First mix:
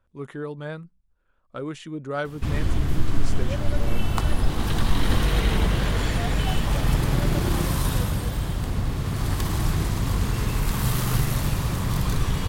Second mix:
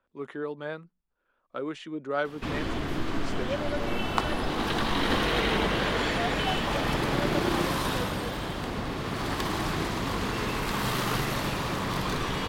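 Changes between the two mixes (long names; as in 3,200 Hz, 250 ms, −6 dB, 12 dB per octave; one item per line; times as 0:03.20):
background +3.0 dB
master: add three-way crossover with the lows and the highs turned down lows −17 dB, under 220 Hz, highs −12 dB, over 5,100 Hz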